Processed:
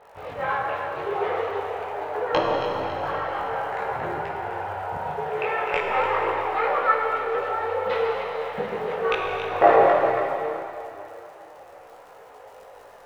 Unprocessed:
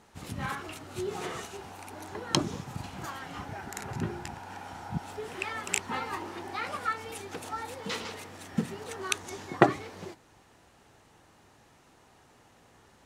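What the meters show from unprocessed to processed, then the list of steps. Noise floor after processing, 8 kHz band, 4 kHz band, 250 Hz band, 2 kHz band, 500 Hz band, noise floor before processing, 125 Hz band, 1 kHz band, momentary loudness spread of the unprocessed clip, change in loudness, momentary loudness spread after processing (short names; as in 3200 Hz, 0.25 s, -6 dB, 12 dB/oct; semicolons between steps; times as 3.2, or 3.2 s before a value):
-47 dBFS, under -15 dB, 0.0 dB, -1.0 dB, +8.5 dB, +14.0 dB, -61 dBFS, -2.5 dB, +12.5 dB, 13 LU, +9.5 dB, 10 LU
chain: tracing distortion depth 0.033 ms; Bessel low-pass 1900 Hz, order 4; resonant low shelf 350 Hz -12.5 dB, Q 3; notch 370 Hz, Q 12; crackle 88/s -51 dBFS; in parallel at -9.5 dB: soft clip -15.5 dBFS, distortion -9 dB; on the sum: echo with dull and thin repeats by turns 0.138 s, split 1000 Hz, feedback 61%, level -5.5 dB; Schroeder reverb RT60 3.1 s, combs from 33 ms, DRR 1 dB; maximiser +9.5 dB; detuned doubles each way 11 cents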